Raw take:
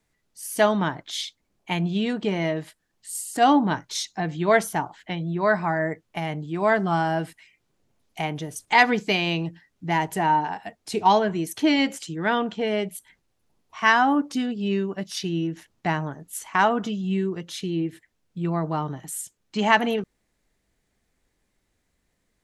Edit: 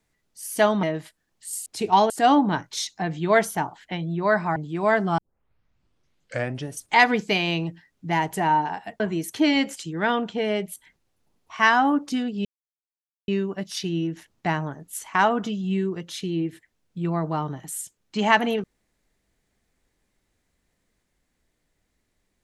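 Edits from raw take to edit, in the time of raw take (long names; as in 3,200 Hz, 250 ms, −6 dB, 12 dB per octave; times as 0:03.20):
0:00.83–0:02.45: remove
0:05.74–0:06.35: remove
0:06.97: tape start 1.59 s
0:10.79–0:11.23: move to 0:03.28
0:14.68: splice in silence 0.83 s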